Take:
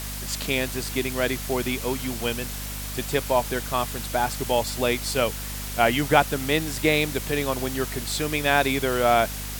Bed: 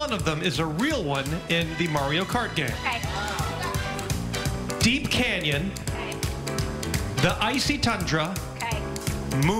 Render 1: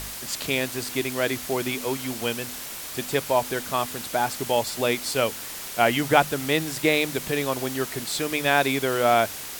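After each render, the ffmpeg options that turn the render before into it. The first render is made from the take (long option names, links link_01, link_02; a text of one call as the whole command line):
ffmpeg -i in.wav -af "bandreject=frequency=50:width_type=h:width=4,bandreject=frequency=100:width_type=h:width=4,bandreject=frequency=150:width_type=h:width=4,bandreject=frequency=200:width_type=h:width=4,bandreject=frequency=250:width_type=h:width=4" out.wav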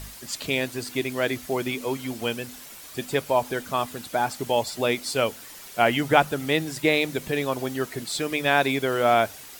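ffmpeg -i in.wav -af "afftdn=noise_reduction=9:noise_floor=-36" out.wav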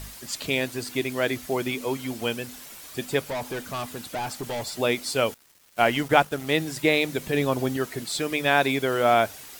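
ffmpeg -i in.wav -filter_complex "[0:a]asplit=3[link_01][link_02][link_03];[link_01]afade=type=out:start_time=3.26:duration=0.02[link_04];[link_02]volume=27.5dB,asoftclip=hard,volume=-27.5dB,afade=type=in:start_time=3.26:duration=0.02,afade=type=out:start_time=4.72:duration=0.02[link_05];[link_03]afade=type=in:start_time=4.72:duration=0.02[link_06];[link_04][link_05][link_06]amix=inputs=3:normalize=0,asettb=1/sr,asplit=3[link_07][link_08][link_09];[link_07]atrim=end=5.344[link_10];[link_08]atrim=start=5.34:end=6.53,asetpts=PTS-STARTPTS,afade=type=in:duration=0.004:curve=qsin,afade=type=out:start_time=1.186:duration=0.004:curve=qsin,aeval=exprs='sgn(val(0))*max(abs(val(0))-0.0119,0)':channel_layout=same[link_11];[link_09]atrim=start=6.526[link_12];[link_10][link_11]acrossfade=duration=0.004:curve1=hsin:curve2=qsin[link_13];[link_13][link_12]acrossfade=duration=0.004:curve1=qsin:curve2=hsin,asettb=1/sr,asplit=3[link_14][link_15][link_16];[link_14]atrim=end=7.344[link_17];[link_15]atrim=start=7.34:end=7.77,asetpts=PTS-STARTPTS,afade=type=in:duration=0.004:curve=qsin,afade=type=out:start_time=0.426:duration=0.004:curve=qsin,lowshelf=frequency=320:gain=7[link_18];[link_16]atrim=start=7.766[link_19];[link_17][link_18]acrossfade=duration=0.004:curve1=hsin:curve2=qsin[link_20];[link_20][link_19]acrossfade=duration=0.004:curve1=qsin:curve2=hsin" out.wav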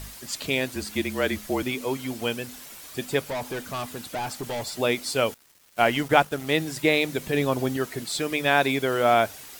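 ffmpeg -i in.wav -filter_complex "[0:a]asettb=1/sr,asplit=3[link_01][link_02][link_03];[link_01]atrim=end=0.754[link_04];[link_02]atrim=start=0.75:end=1.63,asetpts=PTS-STARTPTS,afade=type=in:duration=0.004:curve=qsin,afade=type=out:start_time=0.876:duration=0.004:curve=qsin,afreqshift=-39[link_05];[link_03]atrim=start=1.626[link_06];[link_04][link_05]acrossfade=duration=0.004:curve1=hsin:curve2=qsin[link_07];[link_07][link_06]acrossfade=duration=0.004:curve1=qsin:curve2=hsin" out.wav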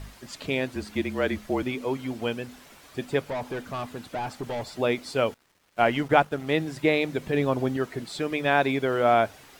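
ffmpeg -i in.wav -af "lowpass=frequency=2000:poles=1" out.wav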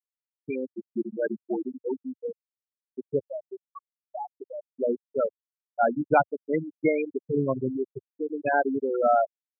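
ffmpeg -i in.wav -af "afftfilt=real='re*gte(hypot(re,im),0.251)':imag='im*gte(hypot(re,im),0.251)':win_size=1024:overlap=0.75,highpass=frequency=100:width=0.5412,highpass=frequency=100:width=1.3066" out.wav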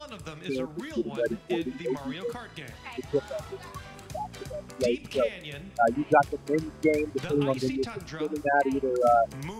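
ffmpeg -i in.wav -i bed.wav -filter_complex "[1:a]volume=-15dB[link_01];[0:a][link_01]amix=inputs=2:normalize=0" out.wav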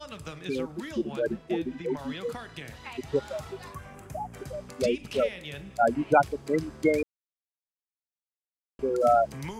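ffmpeg -i in.wav -filter_complex "[0:a]asettb=1/sr,asplit=3[link_01][link_02][link_03];[link_01]atrim=end=1.194[link_04];[link_02]atrim=start=1.19:end=1.99,asetpts=PTS-STARTPTS,afade=type=in:duration=0.004:curve=qsin,afade=type=out:start_time=0.796:duration=0.004:curve=qsin,highshelf=frequency=2300:gain=-7.5[link_05];[link_03]atrim=start=1.986[link_06];[link_04][link_05]acrossfade=duration=0.004:curve1=hsin:curve2=qsin[link_07];[link_07][link_06]acrossfade=duration=0.004:curve1=qsin:curve2=hsin,asettb=1/sr,asplit=3[link_08][link_09][link_10];[link_08]atrim=end=3.744[link_11];[link_09]atrim=start=3.74:end=4.46,asetpts=PTS-STARTPTS,afade=type=in:duration=0.004:curve=qsin,afade=type=out:start_time=0.716:duration=0.004:curve=qsin,equalizer=frequency=4100:width_type=o:width=1:gain=-14.5[link_12];[link_10]atrim=start=4.456[link_13];[link_11][link_12]acrossfade=duration=0.004:curve1=hsin:curve2=qsin[link_14];[link_14][link_13]acrossfade=duration=0.004:curve1=qsin:curve2=hsin,asplit=3[link_15][link_16][link_17];[link_15]atrim=end=7.03,asetpts=PTS-STARTPTS,afade=type=out:start_time=7.026:duration=0.004:curve=hsin[link_18];[link_16]atrim=start=7.03:end=8.79,asetpts=PTS-STARTPTS,volume=0[link_19];[link_17]atrim=start=8.79,asetpts=PTS-STARTPTS,afade=type=in:duration=0.004:curve=hsin[link_20];[link_18][link_19][link_20]concat=n=3:v=0:a=1" out.wav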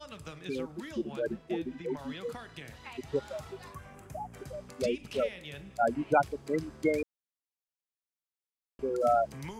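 ffmpeg -i in.wav -af "volume=-4.5dB" out.wav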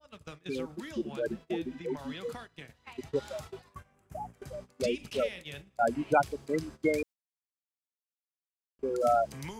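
ffmpeg -i in.wav -af "agate=range=-17dB:threshold=-44dB:ratio=16:detection=peak,adynamicequalizer=threshold=0.00631:dfrequency=2500:dqfactor=0.7:tfrequency=2500:tqfactor=0.7:attack=5:release=100:ratio=0.375:range=2.5:mode=boostabove:tftype=highshelf" out.wav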